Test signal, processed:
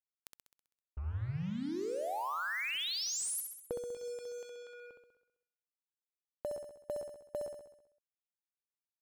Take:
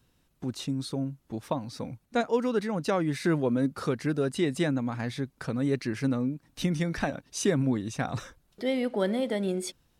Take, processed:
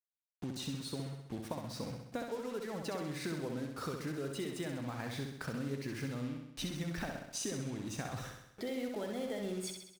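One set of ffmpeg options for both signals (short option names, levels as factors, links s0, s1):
-filter_complex "[0:a]adynamicequalizer=threshold=0.00794:dfrequency=230:dqfactor=2.4:tfrequency=230:tqfactor=2.4:attack=5:release=100:ratio=0.375:range=2.5:mode=cutabove:tftype=bell,acompressor=threshold=0.02:ratio=16,acrusher=bits=7:mix=0:aa=0.5,asplit=2[s0][s1];[s1]aecho=0:1:65|130|195|260|325|390|455|520:0.562|0.321|0.183|0.104|0.0594|0.0338|0.0193|0.011[s2];[s0][s2]amix=inputs=2:normalize=0,volume=0.75"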